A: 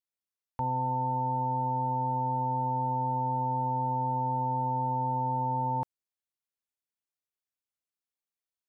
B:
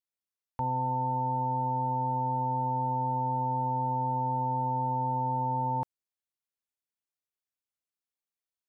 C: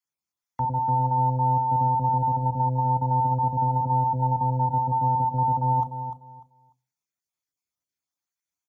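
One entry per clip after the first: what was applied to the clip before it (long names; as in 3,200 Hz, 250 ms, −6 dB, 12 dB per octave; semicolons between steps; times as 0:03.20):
no processing that can be heard
time-frequency cells dropped at random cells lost 27%; repeating echo 297 ms, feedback 22%, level −9 dB; convolution reverb RT60 0.55 s, pre-delay 3 ms, DRR 12 dB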